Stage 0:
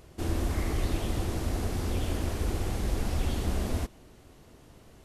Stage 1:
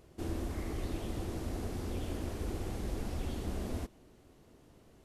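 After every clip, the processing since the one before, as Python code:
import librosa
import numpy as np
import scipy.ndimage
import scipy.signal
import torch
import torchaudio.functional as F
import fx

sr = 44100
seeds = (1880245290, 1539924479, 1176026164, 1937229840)

y = fx.peak_eq(x, sr, hz=320.0, db=4.5, octaves=2.1)
y = fx.rider(y, sr, range_db=10, speed_s=0.5)
y = y * 10.0 ** (-9.0 / 20.0)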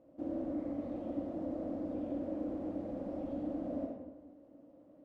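y = fx.double_bandpass(x, sr, hz=400.0, octaves=0.9)
y = fx.rev_freeverb(y, sr, rt60_s=1.2, hf_ratio=0.55, predelay_ms=20, drr_db=0.5)
y = y * 10.0 ** (7.5 / 20.0)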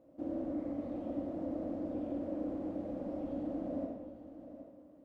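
y = x + 10.0 ** (-12.5 / 20.0) * np.pad(x, (int(773 * sr / 1000.0), 0))[:len(x)]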